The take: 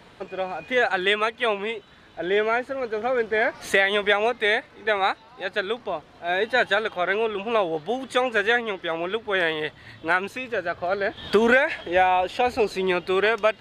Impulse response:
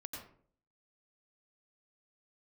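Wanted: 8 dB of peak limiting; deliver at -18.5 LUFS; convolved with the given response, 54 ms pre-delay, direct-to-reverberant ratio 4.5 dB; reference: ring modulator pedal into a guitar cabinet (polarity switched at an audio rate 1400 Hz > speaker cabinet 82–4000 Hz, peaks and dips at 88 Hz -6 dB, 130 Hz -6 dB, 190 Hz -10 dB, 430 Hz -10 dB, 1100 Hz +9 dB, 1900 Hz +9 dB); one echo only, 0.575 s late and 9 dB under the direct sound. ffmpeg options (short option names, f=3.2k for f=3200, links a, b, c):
-filter_complex "[0:a]alimiter=limit=-15dB:level=0:latency=1,aecho=1:1:575:0.355,asplit=2[a][b];[1:a]atrim=start_sample=2205,adelay=54[c];[b][c]afir=irnorm=-1:irlink=0,volume=-2dB[d];[a][d]amix=inputs=2:normalize=0,aeval=exprs='val(0)*sgn(sin(2*PI*1400*n/s))':c=same,highpass=82,equalizer=f=88:t=q:w=4:g=-6,equalizer=f=130:t=q:w=4:g=-6,equalizer=f=190:t=q:w=4:g=-10,equalizer=f=430:t=q:w=4:g=-10,equalizer=f=1.1k:t=q:w=4:g=9,equalizer=f=1.9k:t=q:w=4:g=9,lowpass=f=4k:w=0.5412,lowpass=f=4k:w=1.3066,volume=0.5dB"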